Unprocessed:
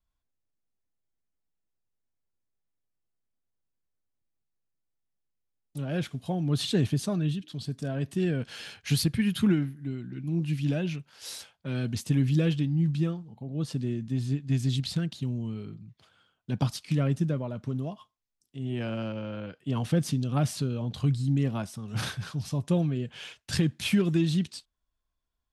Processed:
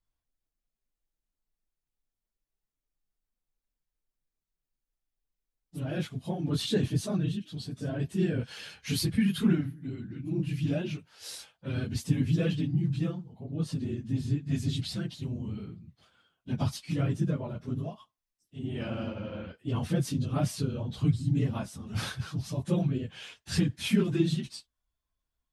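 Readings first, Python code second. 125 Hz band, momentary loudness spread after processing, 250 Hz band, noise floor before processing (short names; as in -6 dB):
-2.0 dB, 13 LU, -1.5 dB, -81 dBFS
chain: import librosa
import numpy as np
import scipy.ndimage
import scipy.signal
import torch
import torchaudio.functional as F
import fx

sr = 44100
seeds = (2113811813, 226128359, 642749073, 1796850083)

y = fx.phase_scramble(x, sr, seeds[0], window_ms=50)
y = y * librosa.db_to_amplitude(-2.0)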